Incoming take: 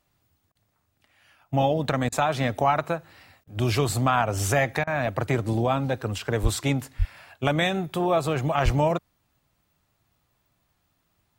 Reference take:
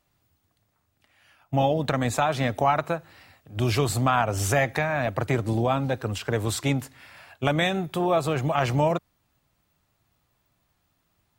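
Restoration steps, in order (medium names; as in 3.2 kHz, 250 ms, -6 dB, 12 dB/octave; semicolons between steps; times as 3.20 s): de-plosive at 6.42/6.98/8.64 s; interpolate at 0.52/2.09/3.44/4.84 s, 31 ms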